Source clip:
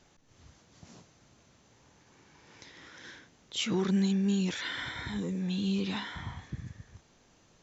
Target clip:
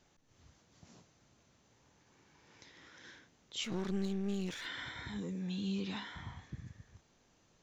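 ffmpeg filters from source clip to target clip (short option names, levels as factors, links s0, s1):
-filter_complex "[0:a]asplit=3[s0][s1][s2];[s0]afade=t=out:st=3.63:d=0.02[s3];[s1]aeval=exprs='clip(val(0),-1,0.015)':c=same,afade=t=in:st=3.63:d=0.02,afade=t=out:st=4.65:d=0.02[s4];[s2]afade=t=in:st=4.65:d=0.02[s5];[s3][s4][s5]amix=inputs=3:normalize=0,volume=0.473"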